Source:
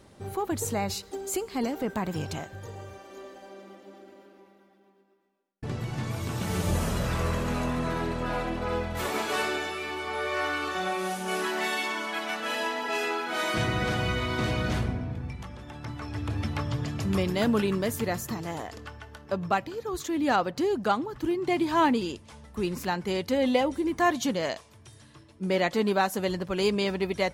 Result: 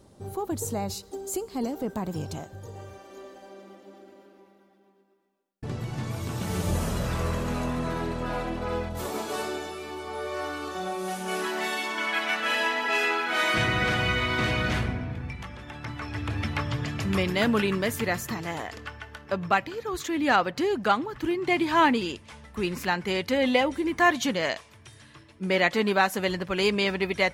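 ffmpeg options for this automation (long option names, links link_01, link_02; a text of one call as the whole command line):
ffmpeg -i in.wav -af "asetnsamples=nb_out_samples=441:pad=0,asendcmd='2.75 equalizer g -2;8.89 equalizer g -9.5;11.08 equalizer g -1;11.98 equalizer g 7.5',equalizer=frequency=2100:width_type=o:width=1.6:gain=-9" out.wav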